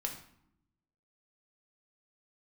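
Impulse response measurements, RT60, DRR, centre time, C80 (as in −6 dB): 0.75 s, 1.5 dB, 19 ms, 11.0 dB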